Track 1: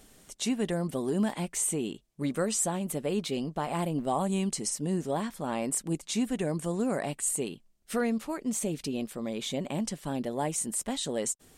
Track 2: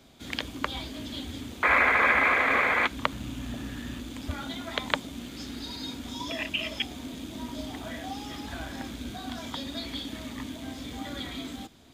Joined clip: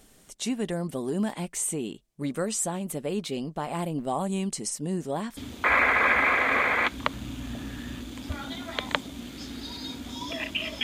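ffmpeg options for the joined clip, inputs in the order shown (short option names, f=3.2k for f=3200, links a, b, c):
-filter_complex "[0:a]apad=whole_dur=10.83,atrim=end=10.83,atrim=end=5.372[a];[1:a]atrim=start=1.358:end=6.82[b];[a][b]acrossfade=d=0.004:c1=hsin:c2=hsin"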